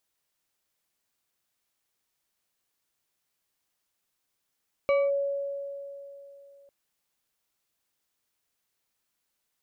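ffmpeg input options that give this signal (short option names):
-f lavfi -i "aevalsrc='0.112*pow(10,-3*t/3.13)*sin(2*PI*560*t+0.54*clip(1-t/0.22,0,1)*sin(2*PI*3.06*560*t))':d=1.8:s=44100"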